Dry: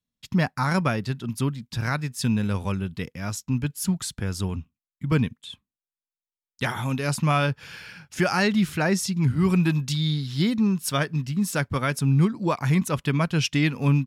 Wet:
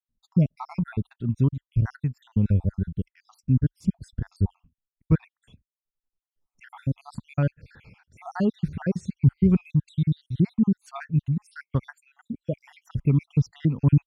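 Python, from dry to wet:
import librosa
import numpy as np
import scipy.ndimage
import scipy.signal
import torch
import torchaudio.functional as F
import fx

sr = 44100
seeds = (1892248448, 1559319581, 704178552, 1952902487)

y = fx.spec_dropout(x, sr, seeds[0], share_pct=65)
y = fx.tilt_eq(y, sr, slope=-4.5)
y = fx.band_squash(y, sr, depth_pct=70, at=(5.41, 6.7))
y = y * librosa.db_to_amplitude(-7.0)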